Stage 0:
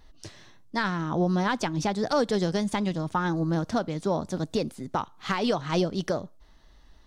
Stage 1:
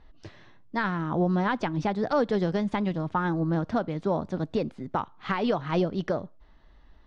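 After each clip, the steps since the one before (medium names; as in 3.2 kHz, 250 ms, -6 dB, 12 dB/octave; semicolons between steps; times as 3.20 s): low-pass 2.7 kHz 12 dB/octave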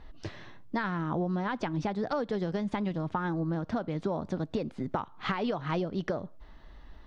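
compression 6:1, threshold -34 dBFS, peak gain reduction 13.5 dB; trim +5.5 dB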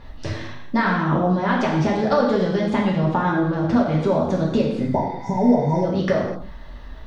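spectral replace 4.90–5.81 s, 1–5.2 kHz before; gated-style reverb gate 280 ms falling, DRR -3.5 dB; trim +7.5 dB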